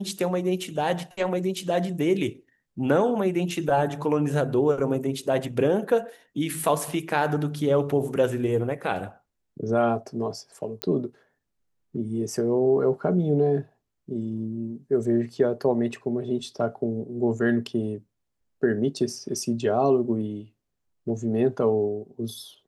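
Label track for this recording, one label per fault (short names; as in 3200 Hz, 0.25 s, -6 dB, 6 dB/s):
10.820000	10.820000	pop -11 dBFS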